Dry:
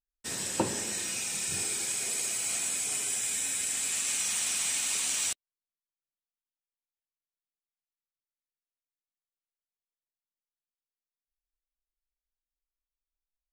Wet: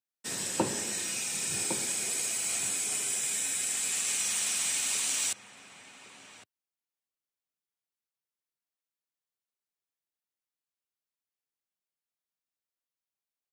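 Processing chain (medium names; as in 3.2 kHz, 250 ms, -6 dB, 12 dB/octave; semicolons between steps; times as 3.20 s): high-pass 100 Hz 24 dB/octave; echo from a far wall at 190 m, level -8 dB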